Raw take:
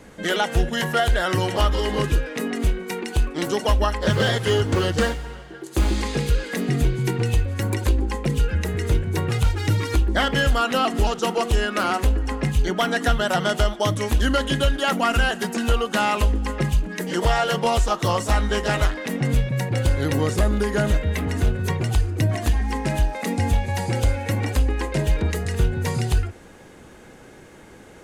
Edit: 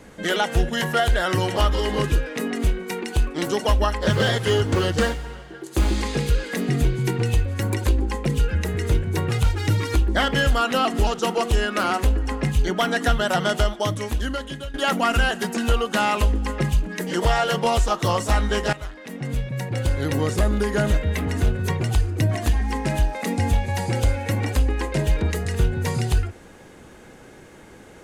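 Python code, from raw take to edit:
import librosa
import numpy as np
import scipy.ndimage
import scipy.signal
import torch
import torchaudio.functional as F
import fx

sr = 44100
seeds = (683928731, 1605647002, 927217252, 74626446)

y = fx.edit(x, sr, fx.fade_out_to(start_s=13.56, length_s=1.18, floor_db=-16.5),
    fx.fade_in_from(start_s=18.73, length_s=2.21, curve='qsin', floor_db=-17.0), tone=tone)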